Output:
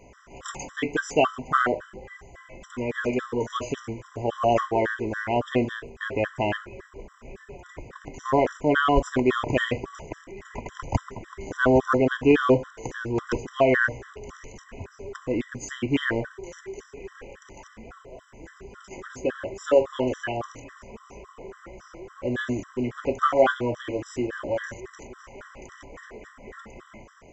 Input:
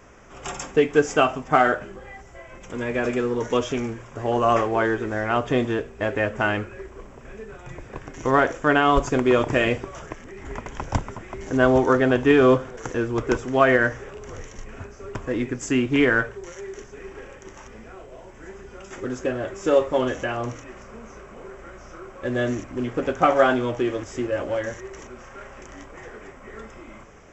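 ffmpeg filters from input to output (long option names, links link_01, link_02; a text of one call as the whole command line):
ffmpeg -i in.wav -filter_complex "[0:a]asettb=1/sr,asplit=3[link_01][link_02][link_03];[link_01]atrim=end=20.864[link_04];[link_02]atrim=start=20.86:end=21.4,asetpts=PTS-STARTPTS,afade=type=in:duration=0.004:curve=qsin,afade=type=out:start_time=0.536:duration=0.004:curve=qsin,equalizer=frequency=1000:width_type=o:width=0.33:gain=5,equalizer=frequency=1600:width_type=o:width=0.33:gain=-12,equalizer=frequency=2500:width_type=o:width=0.33:gain=5[link_05];[link_03]atrim=start=21.396[link_06];[link_04][link_05]acrossfade=duration=0.004:curve1=hsin:curve2=qsin[link_07];[link_07][link_06]acrossfade=duration=0.004:curve1=qsin:curve2=hsin,afftfilt=real='re*gt(sin(2*PI*3.6*pts/sr)*(1-2*mod(floor(b*sr/1024/1000),2)),0)':imag='im*gt(sin(2*PI*3.6*pts/sr)*(1-2*mod(floor(b*sr/1024/1000),2)),0)':win_size=1024:overlap=0.75" out.wav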